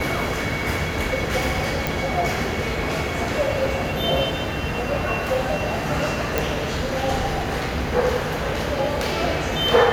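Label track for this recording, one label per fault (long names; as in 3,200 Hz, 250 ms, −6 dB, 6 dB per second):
1.870000	1.870000	click
6.380000	6.380000	click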